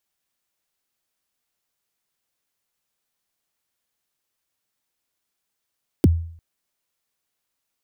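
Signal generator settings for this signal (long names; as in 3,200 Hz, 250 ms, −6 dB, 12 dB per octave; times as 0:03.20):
synth kick length 0.35 s, from 410 Hz, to 83 Hz, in 28 ms, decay 0.56 s, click on, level −8 dB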